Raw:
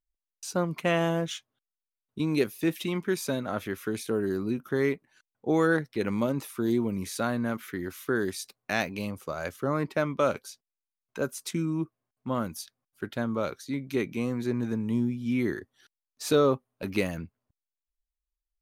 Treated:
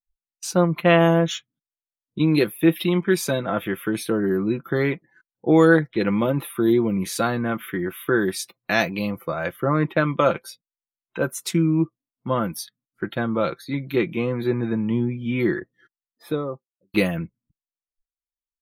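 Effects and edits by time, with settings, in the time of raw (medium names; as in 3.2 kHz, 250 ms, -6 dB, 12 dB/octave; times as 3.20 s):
15.57–16.94 s: studio fade out
whole clip: spectral noise reduction 24 dB; comb 5.9 ms, depth 51%; trim +6.5 dB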